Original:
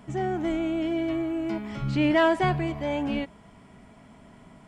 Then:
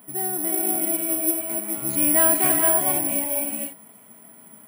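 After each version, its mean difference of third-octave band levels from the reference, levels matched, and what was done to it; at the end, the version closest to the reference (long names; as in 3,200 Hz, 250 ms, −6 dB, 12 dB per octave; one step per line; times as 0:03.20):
10.0 dB: high-pass filter 210 Hz 12 dB per octave
reverb whose tail is shaped and stops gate 500 ms rising, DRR 0 dB
bad sample-rate conversion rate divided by 4×, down filtered, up zero stuff
level −3.5 dB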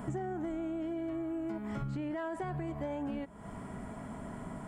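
6.5 dB: flat-topped bell 3,600 Hz −9.5 dB
brickwall limiter −21 dBFS, peak gain reduction 9 dB
downward compressor 16 to 1, threshold −42 dBFS, peak gain reduction 18 dB
level +8 dB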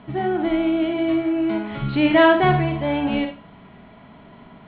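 3.0 dB: Chebyshev low-pass filter 4,100 Hz, order 6
low-shelf EQ 79 Hz −5.5 dB
four-comb reverb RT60 0.33 s, DRR 4.5 dB
level +6 dB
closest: third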